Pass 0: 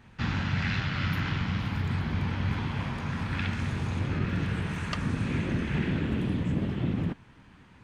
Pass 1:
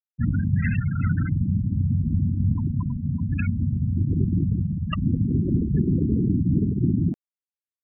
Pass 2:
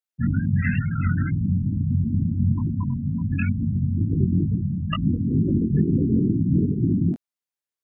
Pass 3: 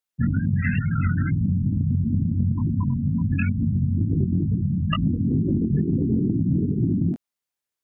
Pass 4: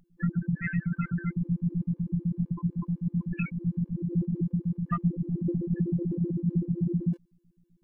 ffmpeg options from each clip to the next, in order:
-af "afftfilt=real='re*gte(hypot(re,im),0.0794)':imag='im*gte(hypot(re,im),0.0794)':win_size=1024:overlap=0.75,areverse,acompressor=mode=upward:threshold=-35dB:ratio=2.5,areverse,volume=7.5dB"
-af "lowshelf=f=83:g=-9.5,flanger=delay=18:depth=4.6:speed=2.2,volume=6dB"
-af "acompressor=threshold=-22dB:ratio=6,volume=4dB"
-af "aeval=exprs='val(0)+0.00251*(sin(2*PI*60*n/s)+sin(2*PI*2*60*n/s)/2+sin(2*PI*3*60*n/s)/3+sin(2*PI*4*60*n/s)/4+sin(2*PI*5*60*n/s)/5)':c=same,afftfilt=real='hypot(re,im)*cos(PI*b)':imag='0':win_size=1024:overlap=0.75,afftfilt=real='re*gt(sin(2*PI*7.9*pts/sr)*(1-2*mod(floor(b*sr/1024/300),2)),0)':imag='im*gt(sin(2*PI*7.9*pts/sr)*(1-2*mod(floor(b*sr/1024/300),2)),0)':win_size=1024:overlap=0.75"

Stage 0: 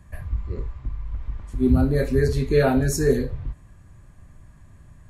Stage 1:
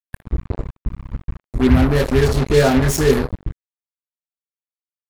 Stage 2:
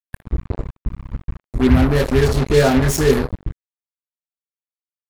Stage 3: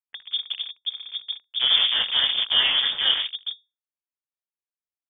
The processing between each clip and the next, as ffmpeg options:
-af "acrusher=bits=3:mix=0:aa=0.5,volume=4.5dB"
-af anull
-af "highshelf=f=2.7k:g=9,lowpass=f=3k:t=q:w=0.5098,lowpass=f=3k:t=q:w=0.6013,lowpass=f=3k:t=q:w=0.9,lowpass=f=3k:t=q:w=2.563,afreqshift=-3500,aeval=exprs='val(0)*sin(2*PI*120*n/s)':c=same,volume=-4.5dB"

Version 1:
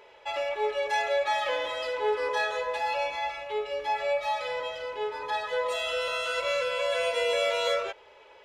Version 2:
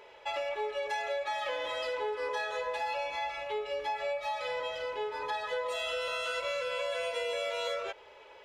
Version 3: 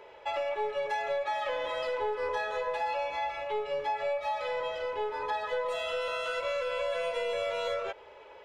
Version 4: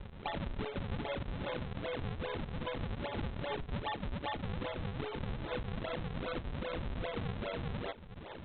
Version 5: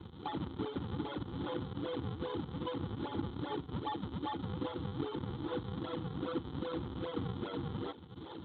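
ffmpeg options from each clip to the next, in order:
-af "acompressor=threshold=-31dB:ratio=6"
-filter_complex "[0:a]highshelf=f=2.2k:g=-9,acrossover=split=420|2000[a][b][c];[a]aeval=exprs='clip(val(0),-1,0.00211)':c=same[d];[d][b][c]amix=inputs=3:normalize=0,volume=4dB"
-af "acompressor=threshold=-40dB:ratio=6,aresample=8000,acrusher=samples=15:mix=1:aa=0.000001:lfo=1:lforange=24:lforate=2.5,aresample=44100,volume=4dB"
-filter_complex "[0:a]superequalizer=6b=2.51:8b=0.316:11b=0.447:12b=0.316:13b=1.78,acrossover=split=2700[a][b];[b]acompressor=threshold=-56dB:ratio=4:attack=1:release=60[c];[a][c]amix=inputs=2:normalize=0" -ar 32000 -c:a libspeex -b:a 28k

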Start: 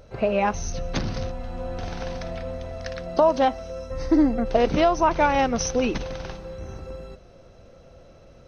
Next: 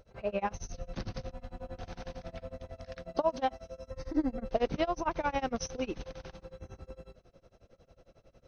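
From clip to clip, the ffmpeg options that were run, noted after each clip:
-af "tremolo=f=11:d=0.96,volume=-7.5dB"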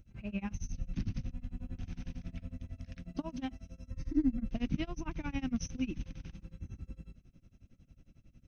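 -af "firequalizer=gain_entry='entry(270,0);entry(450,-24);entry(2500,-6);entry(4300,-15);entry(6200,-7)':delay=0.05:min_phase=1,volume=4dB"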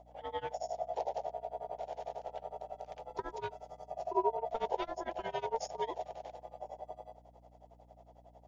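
-af "aeval=exprs='val(0)*sin(2*PI*680*n/s)':c=same,aeval=exprs='val(0)+0.000794*(sin(2*PI*60*n/s)+sin(2*PI*2*60*n/s)/2+sin(2*PI*3*60*n/s)/3+sin(2*PI*4*60*n/s)/4+sin(2*PI*5*60*n/s)/5)':c=same,volume=1dB"

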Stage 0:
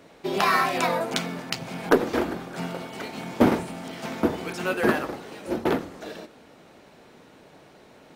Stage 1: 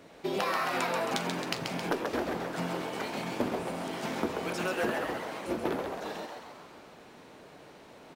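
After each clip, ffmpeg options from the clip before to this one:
-filter_complex "[0:a]acompressor=threshold=-26dB:ratio=10,asplit=2[a][b];[b]asplit=8[c][d][e][f][g][h][i][j];[c]adelay=134,afreqshift=140,volume=-5dB[k];[d]adelay=268,afreqshift=280,volume=-9.7dB[l];[e]adelay=402,afreqshift=420,volume=-14.5dB[m];[f]adelay=536,afreqshift=560,volume=-19.2dB[n];[g]adelay=670,afreqshift=700,volume=-23.9dB[o];[h]adelay=804,afreqshift=840,volume=-28.7dB[p];[i]adelay=938,afreqshift=980,volume=-33.4dB[q];[j]adelay=1072,afreqshift=1120,volume=-38.1dB[r];[k][l][m][n][o][p][q][r]amix=inputs=8:normalize=0[s];[a][s]amix=inputs=2:normalize=0,volume=-2dB"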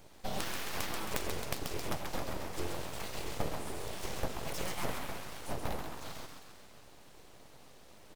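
-af "equalizer=f=1.1k:w=0.32:g=-14.5,aeval=exprs='abs(val(0))':c=same,volume=6dB"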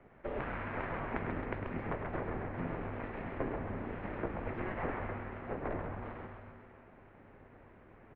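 -filter_complex "[0:a]asplit=7[a][b][c][d][e][f][g];[b]adelay=102,afreqshift=-140,volume=-9dB[h];[c]adelay=204,afreqshift=-280,volume=-14.4dB[i];[d]adelay=306,afreqshift=-420,volume=-19.7dB[j];[e]adelay=408,afreqshift=-560,volume=-25.1dB[k];[f]adelay=510,afreqshift=-700,volume=-30.4dB[l];[g]adelay=612,afreqshift=-840,volume=-35.8dB[m];[a][h][i][j][k][l][m]amix=inputs=7:normalize=0,highpass=f=170:t=q:w=0.5412,highpass=f=170:t=q:w=1.307,lowpass=f=2.3k:t=q:w=0.5176,lowpass=f=2.3k:t=q:w=0.7071,lowpass=f=2.3k:t=q:w=1.932,afreqshift=-180,volume=2dB"

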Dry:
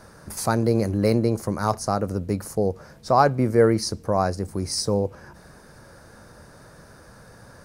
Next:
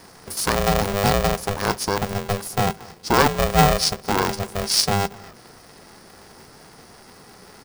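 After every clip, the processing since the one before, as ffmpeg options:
-af "equalizer=f=400:t=o:w=0.33:g=4,equalizer=f=5k:t=o:w=0.33:g=11,equalizer=f=10k:t=o:w=0.33:g=7,aecho=1:1:230:0.0708,aeval=exprs='val(0)*sgn(sin(2*PI*300*n/s))':c=same"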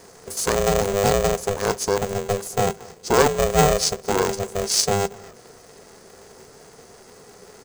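-af "superequalizer=7b=2.51:8b=1.58:15b=2.51,volume=-3dB"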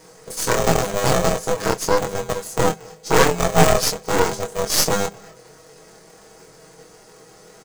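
-af "aecho=1:1:6.3:0.69,flanger=delay=22.5:depth=2.1:speed=0.88,aeval=exprs='0.631*(cos(1*acos(clip(val(0)/0.631,-1,1)))-cos(1*PI/2))+0.158*(cos(6*acos(clip(val(0)/0.631,-1,1)))-cos(6*PI/2))':c=same,volume=1.5dB"

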